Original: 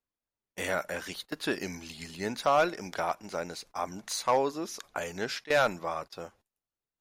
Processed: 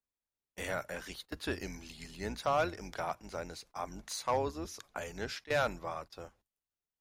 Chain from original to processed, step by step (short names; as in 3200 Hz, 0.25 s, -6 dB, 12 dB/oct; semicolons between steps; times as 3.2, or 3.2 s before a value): octaver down 2 oct, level -2 dB; gain -6 dB